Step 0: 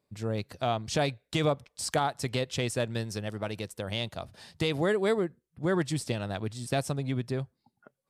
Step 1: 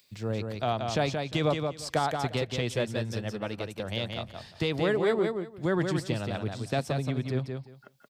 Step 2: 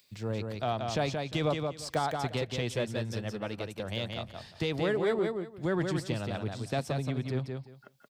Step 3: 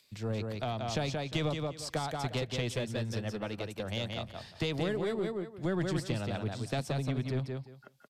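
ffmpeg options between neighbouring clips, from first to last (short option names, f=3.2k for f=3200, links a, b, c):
-filter_complex "[0:a]equalizer=f=9.8k:t=o:w=1:g=-10,acrossover=split=190|2500[a][b][c];[c]acompressor=mode=upward:threshold=-46dB:ratio=2.5[d];[a][b][d]amix=inputs=3:normalize=0,aecho=1:1:176|352|528:0.562|0.101|0.0182"
-filter_complex "[0:a]asplit=2[a][b];[b]asoftclip=type=tanh:threshold=-29dB,volume=-9dB[c];[a][c]amix=inputs=2:normalize=0,deesser=0.65,volume=-4dB"
-filter_complex "[0:a]acrossover=split=260|3000[a][b][c];[b]acompressor=threshold=-33dB:ratio=6[d];[a][d][c]amix=inputs=3:normalize=0,aeval=exprs='0.106*(cos(1*acos(clip(val(0)/0.106,-1,1)))-cos(1*PI/2))+0.0106*(cos(4*acos(clip(val(0)/0.106,-1,1)))-cos(4*PI/2))+0.00299*(cos(6*acos(clip(val(0)/0.106,-1,1)))-cos(6*PI/2))':c=same,aresample=32000,aresample=44100"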